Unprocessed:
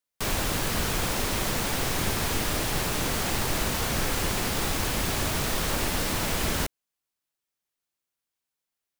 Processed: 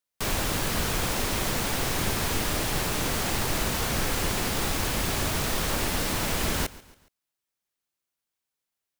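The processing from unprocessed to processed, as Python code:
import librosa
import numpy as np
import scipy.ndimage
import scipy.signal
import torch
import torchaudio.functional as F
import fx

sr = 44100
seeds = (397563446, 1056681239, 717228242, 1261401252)

y = fx.echo_feedback(x, sr, ms=139, feedback_pct=44, wet_db=-20)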